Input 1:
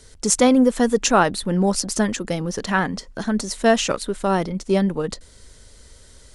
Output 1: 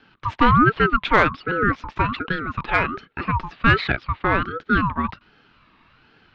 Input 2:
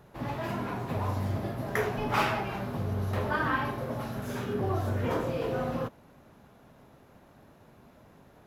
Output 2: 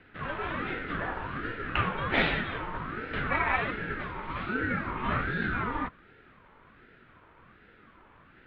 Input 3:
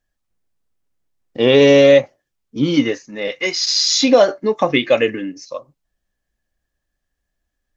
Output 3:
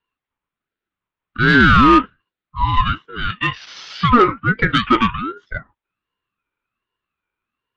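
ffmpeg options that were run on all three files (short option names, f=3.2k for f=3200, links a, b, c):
-af "highpass=f=210:t=q:w=0.5412,highpass=f=210:t=q:w=1.307,lowpass=f=2.9k:t=q:w=0.5176,lowpass=f=2.9k:t=q:w=0.7071,lowpass=f=2.9k:t=q:w=1.932,afreqshift=220,acontrast=38,aeval=exprs='val(0)*sin(2*PI*680*n/s+680*0.35/1.3*sin(2*PI*1.3*n/s))':c=same,volume=-1dB"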